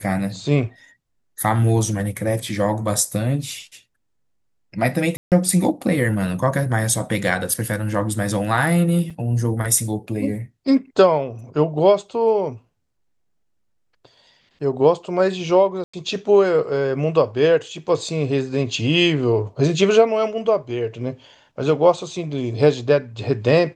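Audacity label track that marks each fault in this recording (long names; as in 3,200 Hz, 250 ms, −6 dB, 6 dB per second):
5.170000	5.320000	drop-out 148 ms
9.100000	9.110000	drop-out 5.2 ms
15.840000	15.940000	drop-out 95 ms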